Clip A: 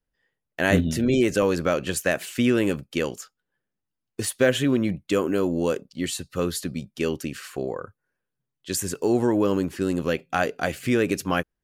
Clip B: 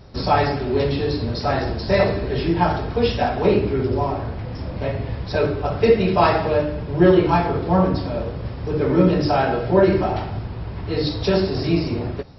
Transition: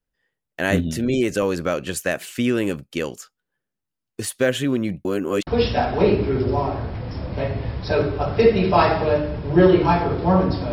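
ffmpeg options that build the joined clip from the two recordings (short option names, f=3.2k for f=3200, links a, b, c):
-filter_complex "[0:a]apad=whole_dur=10.72,atrim=end=10.72,asplit=2[a][b];[a]atrim=end=5.052[c];[b]atrim=start=5.048:end=5.472,asetpts=PTS-STARTPTS,areverse[d];[1:a]atrim=start=2.908:end=8.16[e];[c][d]acrossfade=d=0.004:c1=hsin:c2=hsin[f];[f][e]acrossfade=d=0.004:c1=hsin:c2=hsin"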